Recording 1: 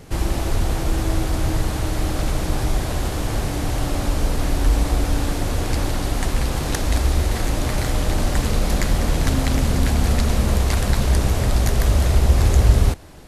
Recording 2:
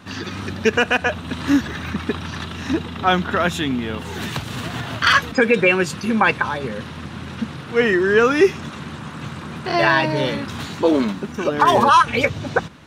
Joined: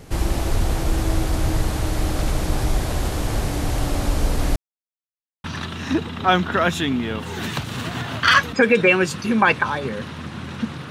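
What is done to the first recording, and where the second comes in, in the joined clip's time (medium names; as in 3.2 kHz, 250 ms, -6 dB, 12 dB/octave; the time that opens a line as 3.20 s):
recording 1
4.56–5.44 s: mute
5.44 s: go over to recording 2 from 2.23 s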